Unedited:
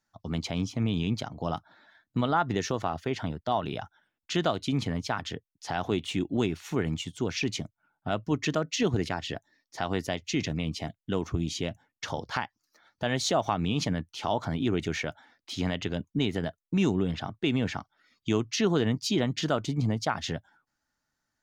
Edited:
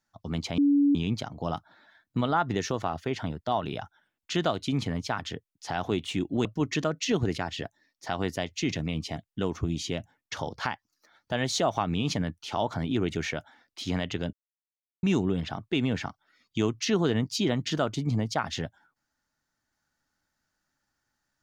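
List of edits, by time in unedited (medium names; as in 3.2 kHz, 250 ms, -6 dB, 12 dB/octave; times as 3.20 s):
0.58–0.95 s: bleep 285 Hz -18 dBFS
6.45–8.16 s: delete
16.04–16.74 s: mute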